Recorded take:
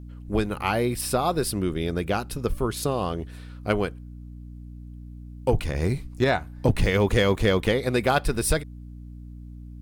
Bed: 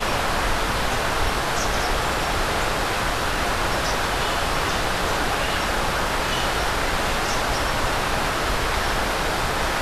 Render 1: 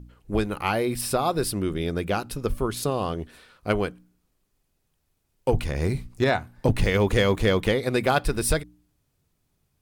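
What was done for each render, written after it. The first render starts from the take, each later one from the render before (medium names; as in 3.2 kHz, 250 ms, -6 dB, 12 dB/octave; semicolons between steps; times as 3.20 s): de-hum 60 Hz, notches 5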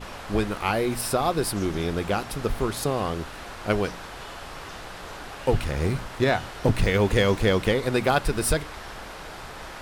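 add bed -16 dB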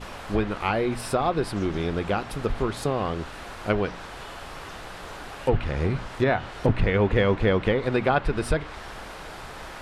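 low-pass that closes with the level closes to 2.8 kHz, closed at -17.5 dBFS; dynamic bell 5.6 kHz, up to -5 dB, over -49 dBFS, Q 1.3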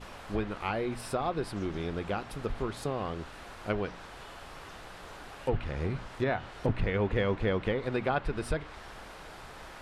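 trim -7.5 dB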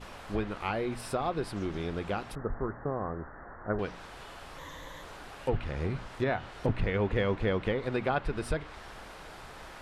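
2.35–3.79 s: steep low-pass 1.9 kHz 96 dB/octave; 4.58–5.03 s: rippled EQ curve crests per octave 1.1, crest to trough 12 dB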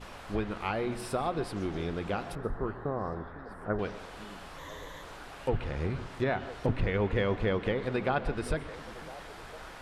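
repeats whose band climbs or falls 504 ms, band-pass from 220 Hz, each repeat 1.4 oct, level -11.5 dB; plate-style reverb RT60 0.59 s, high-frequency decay 0.55×, pre-delay 115 ms, DRR 15.5 dB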